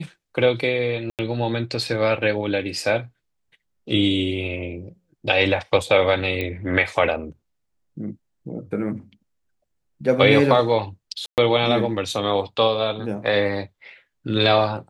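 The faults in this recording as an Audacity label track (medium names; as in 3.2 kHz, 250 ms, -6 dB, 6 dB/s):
1.100000	1.190000	dropout 88 ms
6.410000	6.410000	pop -14 dBFS
11.260000	11.380000	dropout 118 ms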